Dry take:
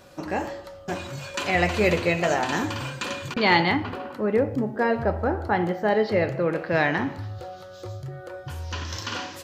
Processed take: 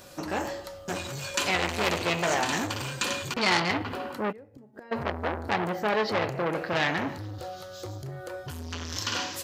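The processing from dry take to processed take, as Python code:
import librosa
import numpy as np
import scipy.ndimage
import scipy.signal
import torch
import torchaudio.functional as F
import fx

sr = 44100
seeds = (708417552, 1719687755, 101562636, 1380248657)

y = fx.high_shelf(x, sr, hz=4300.0, db=10.5)
y = fx.gate_flip(y, sr, shuts_db=-20.0, range_db=-27, at=(4.31, 4.91), fade=0.02)
y = fx.transformer_sat(y, sr, knee_hz=3900.0)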